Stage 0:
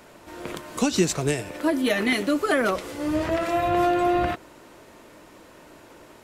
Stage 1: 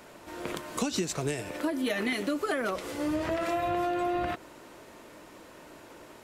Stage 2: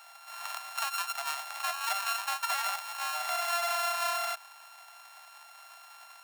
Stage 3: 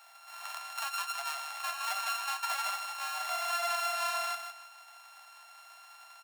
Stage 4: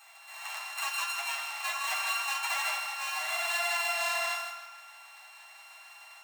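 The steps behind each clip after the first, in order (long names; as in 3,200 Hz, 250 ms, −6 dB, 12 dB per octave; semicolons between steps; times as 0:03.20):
downward compressor 6 to 1, threshold −25 dBFS, peak gain reduction 10 dB; low-shelf EQ 130 Hz −3.5 dB; level −1 dB
samples sorted by size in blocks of 32 samples; Butterworth high-pass 680 Hz 72 dB per octave
flanger 0.81 Hz, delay 8.4 ms, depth 4.2 ms, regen −46%; repeating echo 156 ms, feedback 24%, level −8 dB
convolution reverb RT60 1.3 s, pre-delay 3 ms, DRR −4.5 dB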